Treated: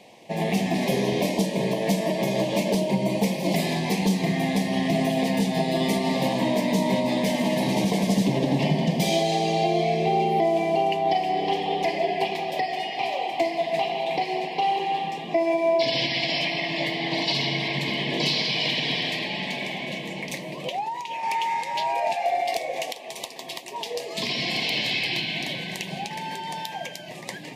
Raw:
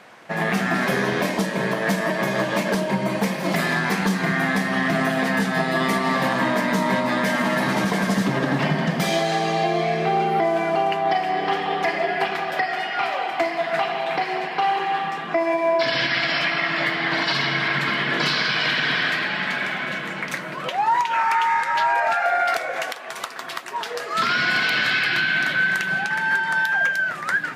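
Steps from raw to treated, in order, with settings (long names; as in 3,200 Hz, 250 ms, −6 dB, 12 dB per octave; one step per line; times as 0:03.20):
0:20.52–0:21.23: downward compressor 6 to 1, threshold −23 dBFS, peak gain reduction 7.5 dB
Butterworth band-reject 1,400 Hz, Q 0.93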